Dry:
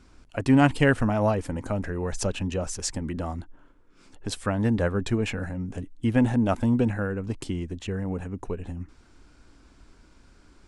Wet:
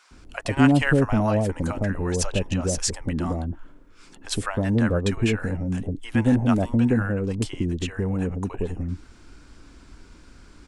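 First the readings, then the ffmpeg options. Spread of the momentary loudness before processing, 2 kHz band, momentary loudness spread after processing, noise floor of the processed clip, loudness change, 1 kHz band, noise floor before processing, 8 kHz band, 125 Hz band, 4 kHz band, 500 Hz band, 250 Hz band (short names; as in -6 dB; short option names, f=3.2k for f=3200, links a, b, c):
13 LU, +2.5 dB, 10 LU, -50 dBFS, +2.5 dB, +0.5 dB, -56 dBFS, +5.0 dB, +3.5 dB, +4.5 dB, +1.5 dB, +2.5 dB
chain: -filter_complex "[0:a]asplit=2[a][b];[b]acompressor=threshold=-30dB:ratio=6,volume=1.5dB[c];[a][c]amix=inputs=2:normalize=0,acrossover=split=710[d][e];[d]adelay=110[f];[f][e]amix=inputs=2:normalize=0"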